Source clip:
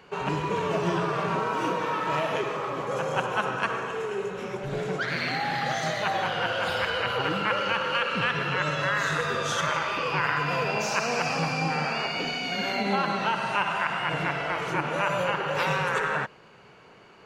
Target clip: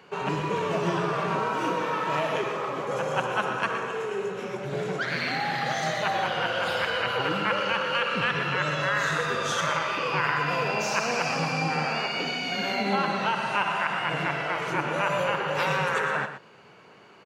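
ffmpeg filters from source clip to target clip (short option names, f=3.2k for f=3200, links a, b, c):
-filter_complex "[0:a]highpass=110,asplit=2[a][b];[b]aecho=0:1:120:0.299[c];[a][c]amix=inputs=2:normalize=0"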